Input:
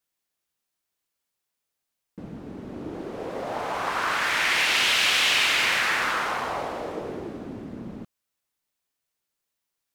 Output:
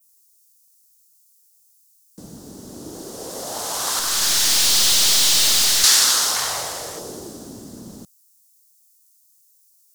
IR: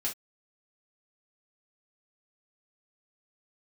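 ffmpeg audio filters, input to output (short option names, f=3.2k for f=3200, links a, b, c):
-filter_complex "[0:a]acrossover=split=200|980|4200[a][b][c][d];[c]adynamicsmooth=sensitivity=7.5:basefreq=2.6k[e];[a][b][e][d]amix=inputs=4:normalize=0,asettb=1/sr,asplit=3[f][g][h];[f]atrim=end=6.364[i];[g]atrim=start=6.36:end=6.99,asetpts=PTS-STARTPTS,afade=t=in:d=0.004:c=qsin,afade=t=out:st=0.626:d=0.004:c=qsin,equalizer=f=125:t=o:w=1:g=6,equalizer=f=250:t=o:w=1:g=-9,equalizer=f=2k:t=o:w=1:g=9[j];[h]atrim=start=6.986[k];[i][j]acrossfade=d=0.004:c1=hsin:c2=qsin[l];[l][k]acrossfade=d=0.004:c1=qsin:c2=hsin,aexciter=amount=6.4:drive=10:freq=3.6k,adynamicequalizer=threshold=0.1:dfrequency=5100:dqfactor=1.2:tfrequency=5100:tqfactor=1.2:attack=5:release=100:ratio=0.375:range=2:mode=boostabove:tftype=bell,asettb=1/sr,asplit=3[m][n][o];[m]atrim=end=3.994[p];[n]atrim=start=3.99:end=5.84,asetpts=PTS-STARTPTS,afade=t=in:d=0.004:c=qsin,afade=t=out:st=1.846:d=0.004:c=qsin,aeval=exprs='(tanh(4.47*val(0)+0.6)-tanh(0.6))/4.47':c=same[q];[o]atrim=start=5.836[r];[p][q]acrossfade=d=0.004:c1=hsin:c2=qsin[s];[s][r]acrossfade=d=0.004:c1=qsin:c2=hsin,volume=-1.5dB"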